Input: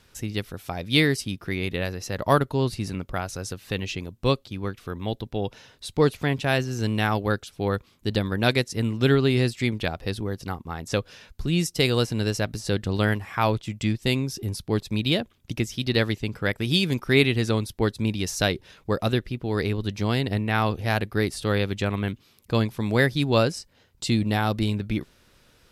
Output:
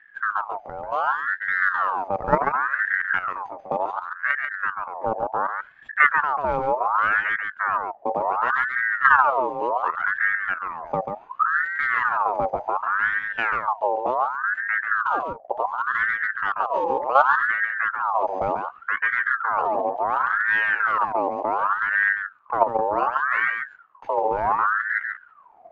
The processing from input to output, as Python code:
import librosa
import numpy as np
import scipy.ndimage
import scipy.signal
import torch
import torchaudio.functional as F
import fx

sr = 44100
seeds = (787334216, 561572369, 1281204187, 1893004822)

p1 = np.r_[np.sort(x[:len(x) // 8 * 8].reshape(-1, 8), axis=1).ravel(), x[len(x) // 8 * 8:]]
p2 = scipy.signal.sosfilt(scipy.signal.butter(2, 1600.0, 'lowpass', fs=sr, output='sos'), p1)
p3 = fx.tilt_eq(p2, sr, slope=-4.0)
p4 = fx.hum_notches(p3, sr, base_hz=60, count=2)
p5 = fx.level_steps(p4, sr, step_db=10)
p6 = p5 + fx.echo_single(p5, sr, ms=139, db=-5.5, dry=0)
y = fx.ring_lfo(p6, sr, carrier_hz=1200.0, swing_pct=45, hz=0.68)